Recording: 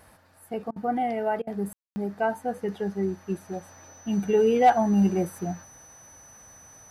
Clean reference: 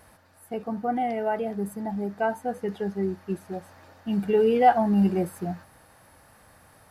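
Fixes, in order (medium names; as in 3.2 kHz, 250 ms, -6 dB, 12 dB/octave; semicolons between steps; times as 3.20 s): clip repair -10.5 dBFS; band-stop 6 kHz, Q 30; room tone fill 1.73–1.96 s; interpolate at 0.71/1.42 s, 50 ms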